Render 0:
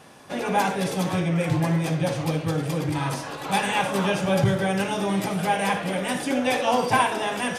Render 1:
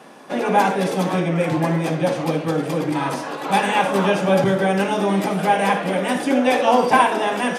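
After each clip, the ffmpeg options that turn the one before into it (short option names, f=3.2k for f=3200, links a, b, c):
-af "highpass=f=190:w=0.5412,highpass=f=190:w=1.3066,highshelf=f=2.4k:g=-8,volume=7dB"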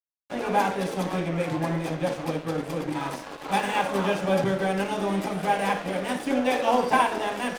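-af "aeval=exprs='sgn(val(0))*max(abs(val(0))-0.0251,0)':c=same,volume=-5.5dB"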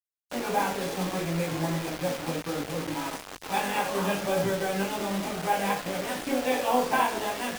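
-filter_complex "[0:a]flanger=delay=17.5:depth=6.7:speed=0.67,acrossover=split=100|5400[a][b][c];[b]acrusher=bits=5:mix=0:aa=0.000001[d];[a][d][c]amix=inputs=3:normalize=0"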